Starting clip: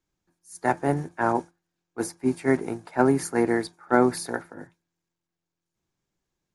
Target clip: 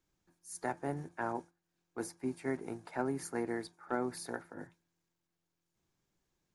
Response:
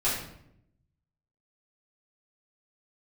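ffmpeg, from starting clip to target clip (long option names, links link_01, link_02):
-af "acompressor=threshold=-44dB:ratio=2"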